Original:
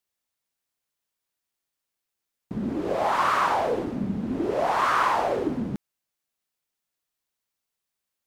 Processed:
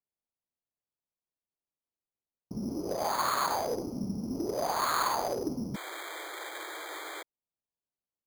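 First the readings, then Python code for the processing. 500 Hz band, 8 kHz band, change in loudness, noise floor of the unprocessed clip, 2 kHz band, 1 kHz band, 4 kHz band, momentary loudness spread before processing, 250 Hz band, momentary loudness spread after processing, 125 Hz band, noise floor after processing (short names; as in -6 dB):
-7.0 dB, +6.5 dB, -8.0 dB, -85 dBFS, -7.5 dB, -7.5 dB, +0.5 dB, 10 LU, -6.5 dB, 11 LU, -6.0 dB, under -85 dBFS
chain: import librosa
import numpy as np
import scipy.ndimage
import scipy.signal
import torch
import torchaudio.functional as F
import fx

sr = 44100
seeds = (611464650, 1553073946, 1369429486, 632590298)

y = fx.wiener(x, sr, points=25)
y = fx.spec_paint(y, sr, seeds[0], shape='noise', start_s=5.74, length_s=1.49, low_hz=300.0, high_hz=2400.0, level_db=-35.0)
y = np.repeat(scipy.signal.resample_poly(y, 1, 8), 8)[:len(y)]
y = y * librosa.db_to_amplitude(-6.0)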